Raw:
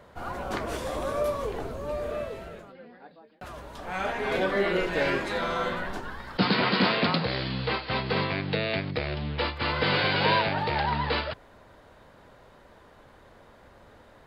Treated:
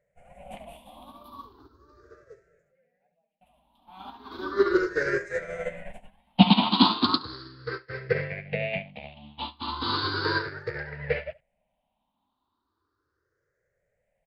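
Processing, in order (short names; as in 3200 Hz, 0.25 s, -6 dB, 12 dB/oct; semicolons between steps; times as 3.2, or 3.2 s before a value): moving spectral ripple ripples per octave 0.52, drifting +0.36 Hz, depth 24 dB; echo 70 ms -9 dB; upward expander 2.5:1, over -33 dBFS; gain +1.5 dB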